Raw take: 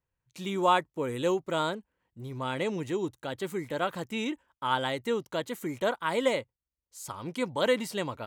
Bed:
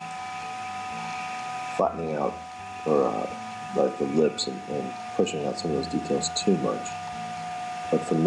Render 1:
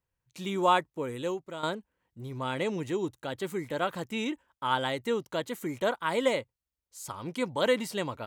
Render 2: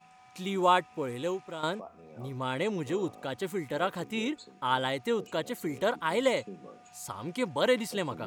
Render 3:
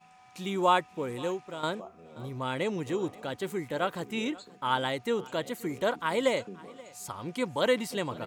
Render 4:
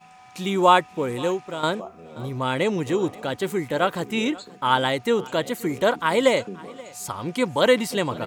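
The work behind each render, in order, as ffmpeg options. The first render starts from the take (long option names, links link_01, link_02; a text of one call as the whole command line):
ffmpeg -i in.wav -filter_complex "[0:a]asplit=2[link_01][link_02];[link_01]atrim=end=1.63,asetpts=PTS-STARTPTS,afade=type=out:start_time=0.78:duration=0.85:silence=0.251189[link_03];[link_02]atrim=start=1.63,asetpts=PTS-STARTPTS,afade=type=in:duration=0.004:curve=hsin:silence=0.251189[link_04];[link_03][link_04]concat=n=2:v=0:a=1" out.wav
ffmpeg -i in.wav -i bed.wav -filter_complex "[1:a]volume=-22dB[link_01];[0:a][link_01]amix=inputs=2:normalize=0" out.wav
ffmpeg -i in.wav -af "aecho=1:1:529:0.0794" out.wav
ffmpeg -i in.wav -af "volume=8dB" out.wav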